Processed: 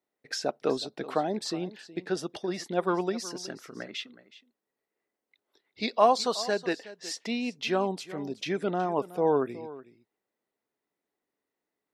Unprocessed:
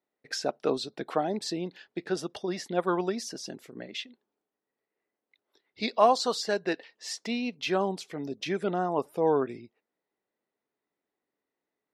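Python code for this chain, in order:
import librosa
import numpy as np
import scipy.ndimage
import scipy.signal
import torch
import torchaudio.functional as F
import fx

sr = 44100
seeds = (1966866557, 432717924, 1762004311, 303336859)

y = fx.peak_eq(x, sr, hz=1300.0, db=15.0, octaves=0.65, at=(3.4, 3.95))
y = y + 10.0 ** (-17.0 / 20.0) * np.pad(y, (int(370 * sr / 1000.0), 0))[:len(y)]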